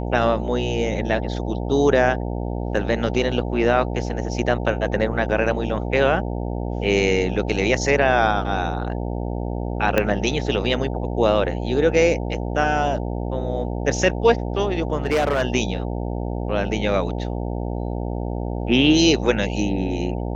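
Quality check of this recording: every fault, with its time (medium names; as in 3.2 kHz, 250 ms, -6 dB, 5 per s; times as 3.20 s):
buzz 60 Hz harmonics 15 -26 dBFS
9.98 s: pop -5 dBFS
15.05–15.43 s: clipped -15.5 dBFS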